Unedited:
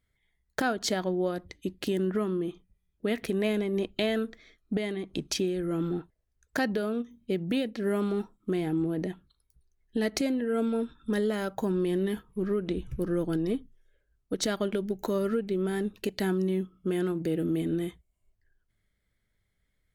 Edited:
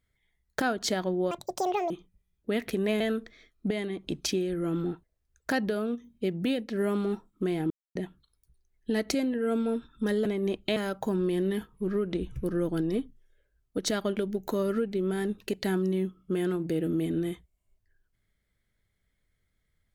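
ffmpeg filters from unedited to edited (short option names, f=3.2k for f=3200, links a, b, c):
-filter_complex "[0:a]asplit=8[a][b][c][d][e][f][g][h];[a]atrim=end=1.314[i];[b]atrim=start=1.31:end=2.46,asetpts=PTS-STARTPTS,asetrate=85554,aresample=44100[j];[c]atrim=start=2.456:end=3.562[k];[d]atrim=start=4.068:end=8.77,asetpts=PTS-STARTPTS,afade=t=out:st=4.698:d=0.004:c=hsin[l];[e]atrim=start=8.77:end=9.02,asetpts=PTS-STARTPTS,volume=0[m];[f]atrim=start=9.02:end=11.322,asetpts=PTS-STARTPTS,afade=t=in:d=0.004:c=hsin[n];[g]atrim=start=3.558:end=4.072[o];[h]atrim=start=11.318[p];[i][j]acrossfade=d=0.004:c1=hsin:c2=hsin[q];[q][k]acrossfade=d=0.004:c1=hsin:c2=hsin[r];[l][m][n]concat=n=3:v=0:a=1[s];[r][s]acrossfade=d=0.004:c1=hsin:c2=hsin[t];[t][o]acrossfade=d=0.004:c1=hsin:c2=hsin[u];[u][p]acrossfade=d=0.004:c1=hsin:c2=hsin"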